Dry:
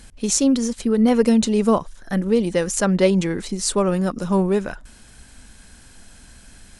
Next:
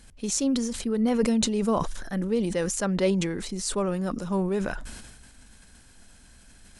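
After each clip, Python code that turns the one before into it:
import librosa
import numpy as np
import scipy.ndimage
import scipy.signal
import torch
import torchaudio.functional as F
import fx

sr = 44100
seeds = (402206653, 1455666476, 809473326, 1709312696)

y = fx.sustainer(x, sr, db_per_s=41.0)
y = y * 10.0 ** (-8.0 / 20.0)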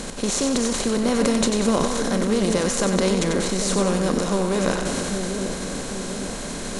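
y = fx.bin_compress(x, sr, power=0.4)
y = fx.echo_split(y, sr, split_hz=660.0, low_ms=799, high_ms=93, feedback_pct=52, wet_db=-6.0)
y = y * 10.0 ** (-1.0 / 20.0)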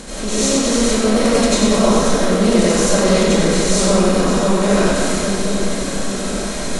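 y = fx.rev_freeverb(x, sr, rt60_s=1.1, hf_ratio=0.85, predelay_ms=55, drr_db=-9.5)
y = y * 10.0 ** (-2.5 / 20.0)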